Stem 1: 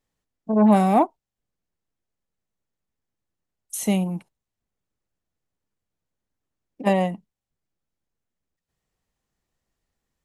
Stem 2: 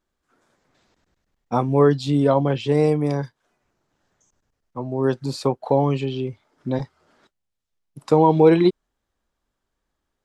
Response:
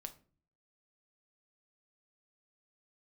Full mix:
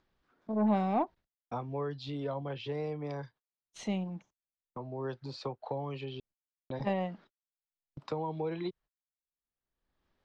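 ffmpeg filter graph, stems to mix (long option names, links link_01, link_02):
-filter_complex "[0:a]aeval=exprs='0.531*(cos(1*acos(clip(val(0)/0.531,-1,1)))-cos(1*PI/2))+0.0075*(cos(6*acos(clip(val(0)/0.531,-1,1)))-cos(6*PI/2))':channel_layout=same,volume=-12dB,asplit=2[link_01][link_02];[1:a]acrossover=split=150|380[link_03][link_04][link_05];[link_03]acompressor=threshold=-32dB:ratio=4[link_06];[link_04]acompressor=threshold=-42dB:ratio=4[link_07];[link_05]acompressor=threshold=-25dB:ratio=4[link_08];[link_06][link_07][link_08]amix=inputs=3:normalize=0,volume=-4.5dB,asplit=3[link_09][link_10][link_11];[link_09]atrim=end=6.2,asetpts=PTS-STARTPTS,afade=type=out:start_time=6.196:duration=0.004:curve=hsin[link_12];[link_10]atrim=start=6.2:end=6.7,asetpts=PTS-STARTPTS,volume=0[link_13];[link_11]atrim=start=6.7,asetpts=PTS-STARTPTS,afade=type=in:duration=0.004:curve=hsin[link_14];[link_12][link_13][link_14]concat=n=3:v=0:a=1[link_15];[link_02]apad=whole_len=451654[link_16];[link_15][link_16]sidechaingate=range=-6dB:threshold=-51dB:ratio=16:detection=peak[link_17];[link_01][link_17]amix=inputs=2:normalize=0,lowpass=frequency=4800:width=0.5412,lowpass=frequency=4800:width=1.3066,agate=range=-41dB:threshold=-57dB:ratio=16:detection=peak,acompressor=mode=upward:threshold=-39dB:ratio=2.5"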